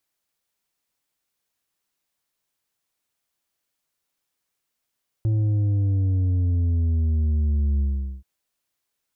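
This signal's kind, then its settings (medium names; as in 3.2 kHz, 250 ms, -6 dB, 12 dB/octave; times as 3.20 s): sub drop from 110 Hz, over 2.98 s, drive 6 dB, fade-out 0.43 s, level -19 dB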